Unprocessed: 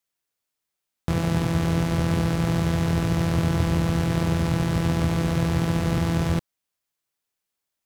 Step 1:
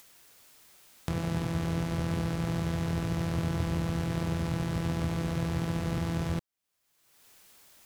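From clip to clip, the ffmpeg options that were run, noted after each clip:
-af "acompressor=mode=upward:threshold=0.0708:ratio=2.5,volume=0.398"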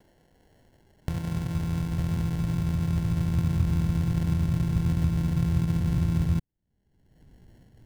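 -af "acrusher=samples=36:mix=1:aa=0.000001,asubboost=boost=5.5:cutoff=220,volume=0.596"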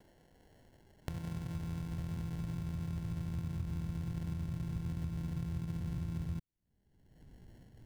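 -af "acompressor=threshold=0.0126:ratio=2.5,volume=0.75"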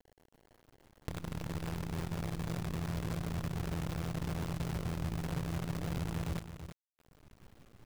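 -af "acrusher=bits=7:dc=4:mix=0:aa=0.000001,aecho=1:1:331:0.335"

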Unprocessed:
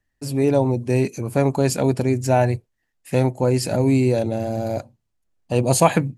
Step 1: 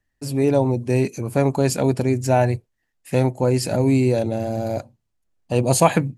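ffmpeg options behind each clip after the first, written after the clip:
-af anull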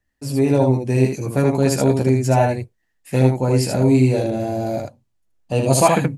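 -af "aecho=1:1:15|77:0.596|0.708,volume=0.891"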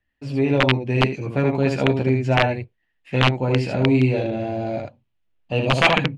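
-af "aeval=exprs='(mod(1.88*val(0)+1,2)-1)/1.88':c=same,lowpass=f=2900:t=q:w=2.3,volume=0.708"

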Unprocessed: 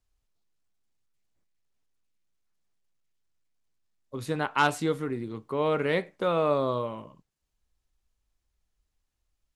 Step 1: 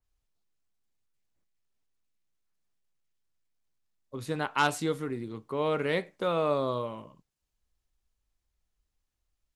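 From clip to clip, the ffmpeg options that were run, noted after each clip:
-af "adynamicequalizer=threshold=0.00631:dfrequency=3200:dqfactor=0.7:tfrequency=3200:tqfactor=0.7:attack=5:release=100:ratio=0.375:range=2:mode=boostabove:tftype=highshelf,volume=0.75"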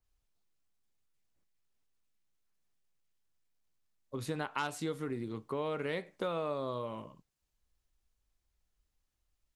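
-af "acompressor=threshold=0.0224:ratio=4"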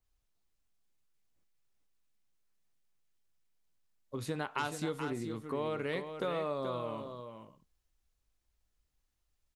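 -af "aecho=1:1:430:0.398"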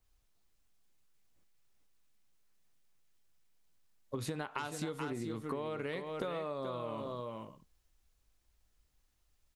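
-af "acompressor=threshold=0.01:ratio=10,volume=1.88"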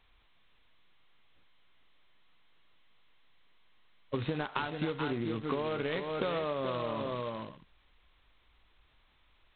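-af "volume=1.78" -ar 8000 -c:a adpcm_g726 -b:a 16k

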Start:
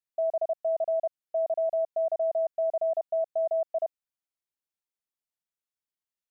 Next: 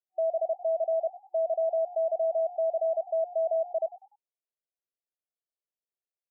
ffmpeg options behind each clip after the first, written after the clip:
-filter_complex "[0:a]afftfilt=real='re*between(b*sr/4096,350,750)':imag='im*between(b*sr/4096,350,750)':win_size=4096:overlap=0.75,asplit=4[s0][s1][s2][s3];[s1]adelay=98,afreqshift=60,volume=0.141[s4];[s2]adelay=196,afreqshift=120,volume=0.0468[s5];[s3]adelay=294,afreqshift=180,volume=0.0153[s6];[s0][s4][s5][s6]amix=inputs=4:normalize=0"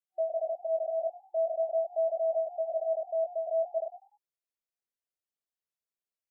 -af "flanger=delay=16.5:depth=6.3:speed=0.46"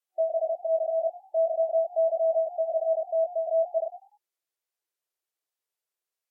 -af "volume=1.68" -ar 44100 -c:a libvorbis -b:a 64k

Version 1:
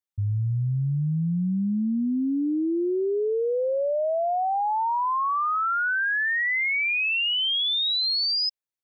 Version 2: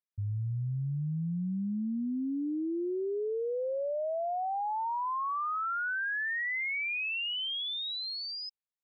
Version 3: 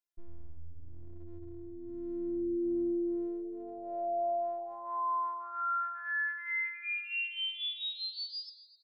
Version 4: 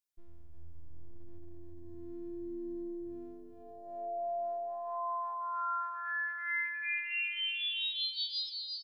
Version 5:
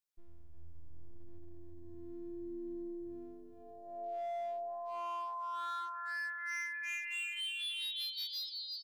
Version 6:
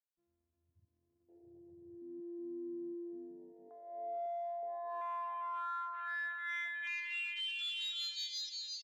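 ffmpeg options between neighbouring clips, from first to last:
-af "lowpass=3600,volume=0.398"
-filter_complex "[0:a]bandreject=f=2300:w=14,asplit=8[s0][s1][s2][s3][s4][s5][s6][s7];[s1]adelay=88,afreqshift=-78,volume=0.211[s8];[s2]adelay=176,afreqshift=-156,volume=0.129[s9];[s3]adelay=264,afreqshift=-234,volume=0.0785[s10];[s4]adelay=352,afreqshift=-312,volume=0.0479[s11];[s5]adelay=440,afreqshift=-390,volume=0.0292[s12];[s6]adelay=528,afreqshift=-468,volume=0.0178[s13];[s7]adelay=616,afreqshift=-546,volume=0.0108[s14];[s0][s8][s9][s10][s11][s12][s13][s14]amix=inputs=8:normalize=0,afftfilt=real='hypot(re,im)*cos(PI*b)':imag='0':win_size=512:overlap=0.75,volume=1.19"
-af "highshelf=f=2300:g=9.5,aecho=1:1:350|560|686|761.6|807:0.631|0.398|0.251|0.158|0.1,volume=0.473"
-af "volume=50.1,asoftclip=hard,volume=0.02,volume=0.75"
-af "highpass=130,afwtdn=0.00398"

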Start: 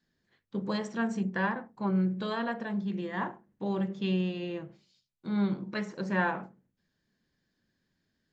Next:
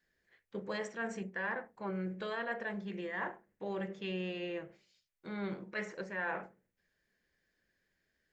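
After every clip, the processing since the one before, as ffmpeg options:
-af "equalizer=f=125:t=o:w=1:g=-10,equalizer=f=250:t=o:w=1:g=-9,equalizer=f=500:t=o:w=1:g=4,equalizer=f=1000:t=o:w=1:g=-5,equalizer=f=2000:t=o:w=1:g=7,equalizer=f=4000:t=o:w=1:g=-6,areverse,acompressor=threshold=0.02:ratio=6,areverse"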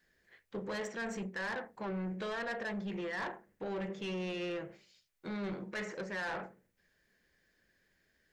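-filter_complex "[0:a]asplit=2[s0][s1];[s1]alimiter=level_in=3.55:limit=0.0631:level=0:latency=1:release=211,volume=0.282,volume=0.794[s2];[s0][s2]amix=inputs=2:normalize=0,asoftclip=type=tanh:threshold=0.0188,volume=1.12"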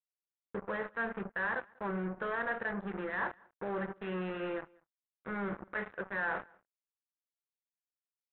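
-filter_complex "[0:a]aresample=8000,acrusher=bits=5:mix=0:aa=0.5,aresample=44100,lowpass=f=1500:t=q:w=1.9,asplit=2[s0][s1];[s1]adelay=192.4,volume=0.0447,highshelf=f=4000:g=-4.33[s2];[s0][s2]amix=inputs=2:normalize=0"

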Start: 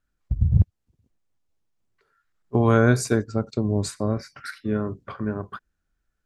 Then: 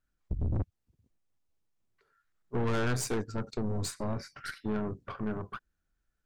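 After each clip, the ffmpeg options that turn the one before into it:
-af "aeval=exprs='(tanh(20*val(0)+0.55)-tanh(0.55))/20':c=same,volume=0.841"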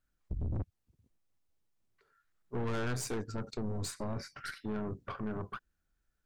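-af "alimiter=level_in=1.78:limit=0.0631:level=0:latency=1:release=45,volume=0.562"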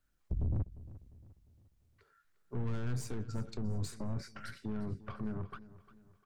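-filter_complex "[0:a]acrossover=split=220[s0][s1];[s1]acompressor=threshold=0.00355:ratio=4[s2];[s0][s2]amix=inputs=2:normalize=0,aecho=1:1:351|702|1053|1404:0.141|0.0607|0.0261|0.0112,volume=1.33"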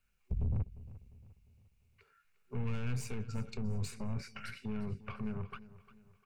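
-af "superequalizer=6b=0.251:8b=0.708:12b=3.16"

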